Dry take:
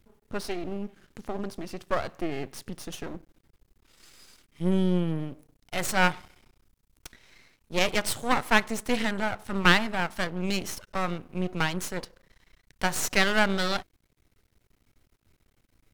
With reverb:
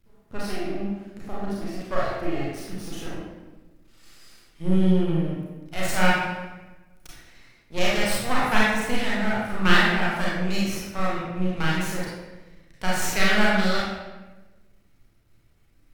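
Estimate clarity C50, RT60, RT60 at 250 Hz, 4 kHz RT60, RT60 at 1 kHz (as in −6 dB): −2.0 dB, 1.2 s, 1.5 s, 0.85 s, 1.1 s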